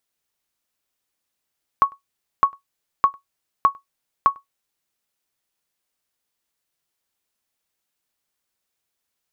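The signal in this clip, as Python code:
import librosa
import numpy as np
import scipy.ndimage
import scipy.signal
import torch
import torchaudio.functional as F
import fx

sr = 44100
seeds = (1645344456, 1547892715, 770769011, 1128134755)

y = fx.sonar_ping(sr, hz=1110.0, decay_s=0.13, every_s=0.61, pings=5, echo_s=0.1, echo_db=-29.5, level_db=-5.5)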